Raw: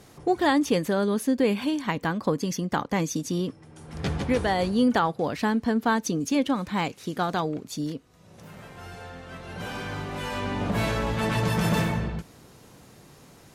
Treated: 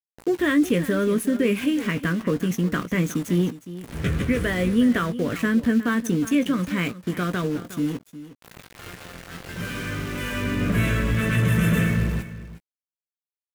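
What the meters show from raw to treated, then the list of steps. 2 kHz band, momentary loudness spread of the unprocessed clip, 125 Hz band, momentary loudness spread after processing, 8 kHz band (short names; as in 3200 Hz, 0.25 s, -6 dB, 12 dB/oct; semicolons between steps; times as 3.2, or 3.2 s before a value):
+4.0 dB, 16 LU, +5.5 dB, 16 LU, 0.0 dB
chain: in parallel at -0.5 dB: limiter -19 dBFS, peak gain reduction 8 dB; on the sum: fixed phaser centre 2000 Hz, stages 4; sample gate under -34 dBFS; doubler 17 ms -10 dB; echo 0.361 s -14.5 dB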